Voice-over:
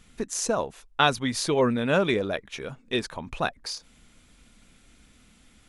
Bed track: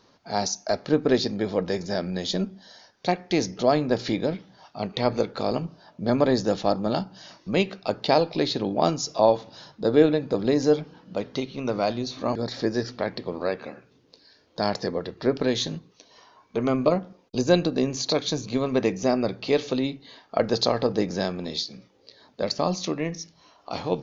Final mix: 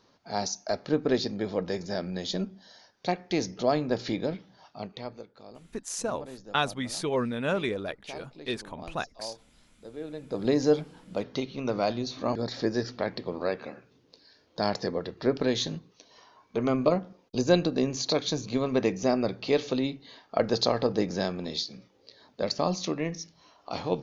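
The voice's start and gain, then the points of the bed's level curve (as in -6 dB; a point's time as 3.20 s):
5.55 s, -5.5 dB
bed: 4.71 s -4.5 dB
5.29 s -22.5 dB
9.99 s -22.5 dB
10.47 s -2.5 dB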